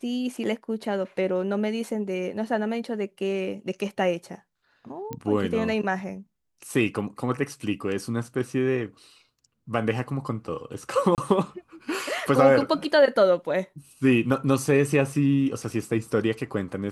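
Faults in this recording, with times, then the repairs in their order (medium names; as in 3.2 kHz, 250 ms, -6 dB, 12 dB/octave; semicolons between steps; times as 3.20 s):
5.13 s: pop -19 dBFS
11.15–11.18 s: dropout 28 ms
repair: de-click; interpolate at 11.15 s, 28 ms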